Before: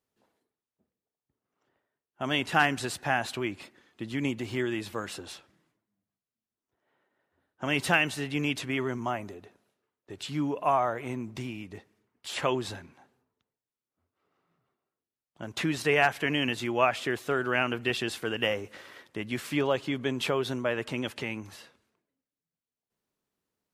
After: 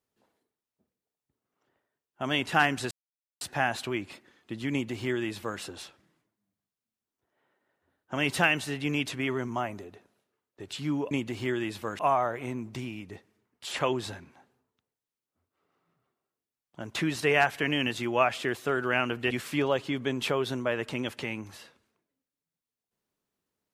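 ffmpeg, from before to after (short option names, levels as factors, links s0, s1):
-filter_complex "[0:a]asplit=5[s0][s1][s2][s3][s4];[s0]atrim=end=2.91,asetpts=PTS-STARTPTS,afade=t=out:st=2.906:d=0.004:c=hsin,apad=pad_dur=0.5[s5];[s1]atrim=start=2.91:end=10.612,asetpts=PTS-STARTPTS,afade=t=in:d=0.004:c=hsin[s6];[s2]atrim=start=4.218:end=5.102[s7];[s3]atrim=start=10.608:end=17.932[s8];[s4]atrim=start=19.298[s9];[s5][s6]concat=n=2:v=0:a=1[s10];[s10][s7]acrossfade=d=0.004:c1=hsin:c2=hsin[s11];[s11][s8]acrossfade=d=0.004:c1=hsin:c2=hsin[s12];[s12][s9]acrossfade=d=0.004:c1=hsin:c2=hsin"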